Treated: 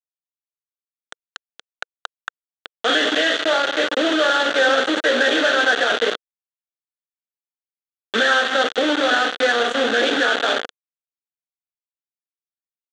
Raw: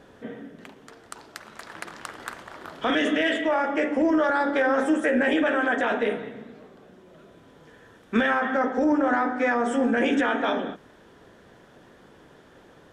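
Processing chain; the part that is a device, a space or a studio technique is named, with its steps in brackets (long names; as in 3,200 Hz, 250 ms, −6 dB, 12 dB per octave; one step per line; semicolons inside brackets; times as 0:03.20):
hand-held game console (bit reduction 4 bits; loudspeaker in its box 420–5,700 Hz, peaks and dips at 480 Hz +3 dB, 970 Hz −10 dB, 1,500 Hz +6 dB, 2,300 Hz −7 dB, 3,400 Hz +8 dB, 5,100 Hz −10 dB)
level +5 dB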